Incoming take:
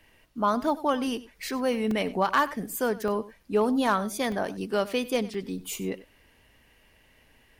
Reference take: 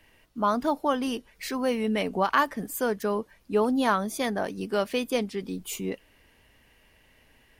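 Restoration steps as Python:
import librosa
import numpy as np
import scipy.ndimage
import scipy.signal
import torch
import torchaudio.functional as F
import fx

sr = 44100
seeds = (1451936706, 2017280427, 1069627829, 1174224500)

y = fx.fix_declip(x, sr, threshold_db=-14.5)
y = fx.fix_interpolate(y, sr, at_s=(1.91, 3.08, 3.43, 4.32, 5.34), length_ms=2.7)
y = fx.fix_echo_inverse(y, sr, delay_ms=96, level_db=-18.0)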